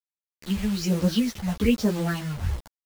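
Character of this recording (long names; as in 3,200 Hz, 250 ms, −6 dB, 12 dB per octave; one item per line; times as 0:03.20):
phaser sweep stages 6, 1.2 Hz, lowest notch 340–2,800 Hz
a quantiser's noise floor 6 bits, dither none
a shimmering, thickened sound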